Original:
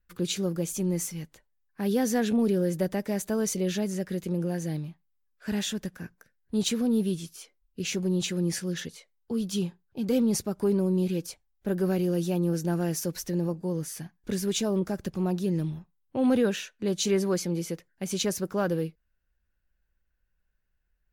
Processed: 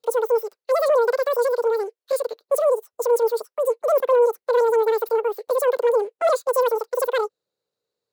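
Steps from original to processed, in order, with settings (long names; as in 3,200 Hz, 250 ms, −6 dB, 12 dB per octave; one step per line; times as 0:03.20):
change of speed 2.6×
high-pass with resonance 470 Hz, resonance Q 3.6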